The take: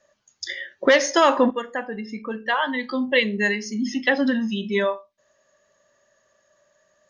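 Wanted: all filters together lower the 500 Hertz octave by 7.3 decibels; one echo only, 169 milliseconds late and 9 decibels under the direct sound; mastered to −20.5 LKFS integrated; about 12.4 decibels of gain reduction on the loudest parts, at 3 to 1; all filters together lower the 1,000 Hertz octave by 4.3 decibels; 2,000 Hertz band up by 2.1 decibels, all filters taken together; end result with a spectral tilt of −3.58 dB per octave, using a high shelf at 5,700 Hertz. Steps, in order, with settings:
parametric band 500 Hz −7.5 dB
parametric band 1,000 Hz −4.5 dB
parametric band 2,000 Hz +4.5 dB
high-shelf EQ 5,700 Hz −5 dB
downward compressor 3 to 1, threshold −31 dBFS
single-tap delay 169 ms −9 dB
level +11.5 dB

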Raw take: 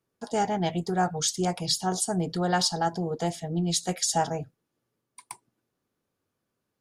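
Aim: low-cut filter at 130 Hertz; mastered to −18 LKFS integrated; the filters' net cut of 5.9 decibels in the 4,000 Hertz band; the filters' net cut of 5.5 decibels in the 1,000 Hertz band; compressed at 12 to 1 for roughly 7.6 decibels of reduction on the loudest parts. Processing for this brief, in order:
high-pass filter 130 Hz
parametric band 1,000 Hz −8 dB
parametric band 4,000 Hz −7.5 dB
downward compressor 12 to 1, threshold −32 dBFS
level +18.5 dB

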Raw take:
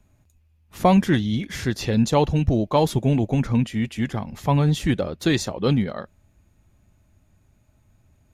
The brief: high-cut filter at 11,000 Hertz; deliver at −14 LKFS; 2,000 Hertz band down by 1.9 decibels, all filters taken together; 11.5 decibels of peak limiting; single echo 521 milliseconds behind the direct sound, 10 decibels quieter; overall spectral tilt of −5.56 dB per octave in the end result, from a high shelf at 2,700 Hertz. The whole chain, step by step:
low-pass filter 11,000 Hz
parametric band 2,000 Hz −4.5 dB
high-shelf EQ 2,700 Hz +5 dB
brickwall limiter −16.5 dBFS
single-tap delay 521 ms −10 dB
level +12.5 dB

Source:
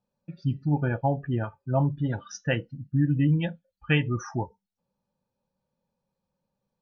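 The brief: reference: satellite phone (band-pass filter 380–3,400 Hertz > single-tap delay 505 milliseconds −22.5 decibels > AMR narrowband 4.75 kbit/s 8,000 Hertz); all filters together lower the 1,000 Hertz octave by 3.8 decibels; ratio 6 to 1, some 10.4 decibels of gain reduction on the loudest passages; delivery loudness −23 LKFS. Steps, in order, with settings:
parametric band 1,000 Hz −5 dB
downward compressor 6 to 1, threshold −30 dBFS
band-pass filter 380–3,400 Hz
single-tap delay 505 ms −22.5 dB
level +22 dB
AMR narrowband 4.75 kbit/s 8,000 Hz

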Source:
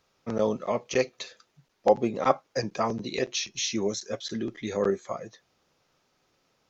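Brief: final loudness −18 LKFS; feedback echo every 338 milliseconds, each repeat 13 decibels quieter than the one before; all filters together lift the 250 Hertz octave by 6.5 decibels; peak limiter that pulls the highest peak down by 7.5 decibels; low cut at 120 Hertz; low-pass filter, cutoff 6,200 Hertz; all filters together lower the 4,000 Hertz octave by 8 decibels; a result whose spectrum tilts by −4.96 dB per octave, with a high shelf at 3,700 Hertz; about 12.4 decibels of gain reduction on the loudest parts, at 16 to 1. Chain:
high-pass filter 120 Hz
low-pass filter 6,200 Hz
parametric band 250 Hz +8.5 dB
high-shelf EQ 3,700 Hz −7 dB
parametric band 4,000 Hz −4.5 dB
downward compressor 16 to 1, threshold −25 dBFS
brickwall limiter −21 dBFS
repeating echo 338 ms, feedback 22%, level −13 dB
level +16 dB

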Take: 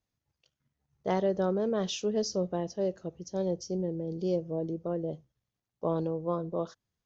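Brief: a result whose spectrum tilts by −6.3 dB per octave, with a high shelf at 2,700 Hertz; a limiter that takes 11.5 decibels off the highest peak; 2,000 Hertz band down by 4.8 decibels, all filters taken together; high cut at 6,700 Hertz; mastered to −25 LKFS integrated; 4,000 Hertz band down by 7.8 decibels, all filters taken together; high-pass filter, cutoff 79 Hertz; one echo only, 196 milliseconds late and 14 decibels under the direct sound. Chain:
high-pass filter 79 Hz
low-pass filter 6,700 Hz
parametric band 2,000 Hz −3.5 dB
high-shelf EQ 2,700 Hz −3.5 dB
parametric band 4,000 Hz −5.5 dB
brickwall limiter −28 dBFS
single-tap delay 196 ms −14 dB
level +13 dB

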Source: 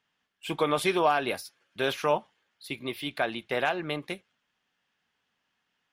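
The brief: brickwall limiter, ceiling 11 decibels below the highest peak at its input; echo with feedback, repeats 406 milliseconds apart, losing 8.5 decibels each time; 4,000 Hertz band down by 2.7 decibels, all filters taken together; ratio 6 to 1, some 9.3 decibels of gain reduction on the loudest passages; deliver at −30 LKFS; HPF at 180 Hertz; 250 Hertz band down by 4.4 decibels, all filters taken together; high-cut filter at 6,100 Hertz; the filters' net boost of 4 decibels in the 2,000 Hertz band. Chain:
high-pass filter 180 Hz
low-pass filter 6,100 Hz
parametric band 250 Hz −6 dB
parametric band 2,000 Hz +7 dB
parametric band 4,000 Hz −6.5 dB
downward compressor 6 to 1, threshold −29 dBFS
brickwall limiter −27.5 dBFS
repeating echo 406 ms, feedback 38%, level −8.5 dB
level +9.5 dB

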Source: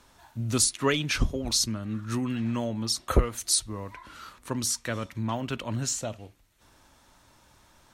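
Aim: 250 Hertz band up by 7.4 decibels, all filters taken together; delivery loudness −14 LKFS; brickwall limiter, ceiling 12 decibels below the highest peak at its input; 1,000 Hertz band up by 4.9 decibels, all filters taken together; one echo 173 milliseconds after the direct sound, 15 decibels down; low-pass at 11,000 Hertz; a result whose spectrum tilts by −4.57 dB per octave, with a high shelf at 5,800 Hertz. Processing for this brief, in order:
low-pass filter 11,000 Hz
parametric band 250 Hz +8 dB
parametric band 1,000 Hz +6 dB
high-shelf EQ 5,800 Hz −6 dB
brickwall limiter −17 dBFS
single-tap delay 173 ms −15 dB
level +13.5 dB

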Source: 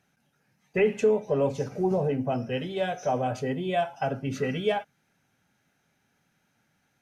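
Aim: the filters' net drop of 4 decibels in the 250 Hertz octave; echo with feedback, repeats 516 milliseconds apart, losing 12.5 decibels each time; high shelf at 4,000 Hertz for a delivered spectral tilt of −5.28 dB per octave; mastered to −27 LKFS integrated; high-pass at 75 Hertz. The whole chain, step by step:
high-pass filter 75 Hz
parametric band 250 Hz −5.5 dB
high-shelf EQ 4,000 Hz −6 dB
repeating echo 516 ms, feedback 24%, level −12.5 dB
level +2 dB

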